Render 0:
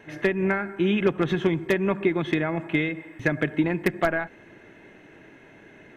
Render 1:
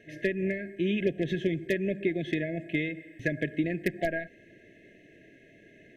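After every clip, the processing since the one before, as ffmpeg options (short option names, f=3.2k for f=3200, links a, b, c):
-af "afftfilt=real='re*(1-between(b*sr/4096,700,1600))':imag='im*(1-between(b*sr/4096,700,1600))':win_size=4096:overlap=0.75,volume=-5.5dB"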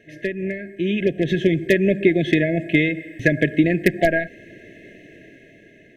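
-af "dynaudnorm=f=350:g=7:m=9.5dB,volume=3dB"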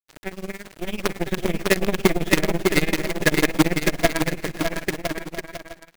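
-af "acrusher=bits=3:dc=4:mix=0:aa=0.000001,aecho=1:1:600|1020|1314|1520|1664:0.631|0.398|0.251|0.158|0.1,tremolo=f=18:d=0.89"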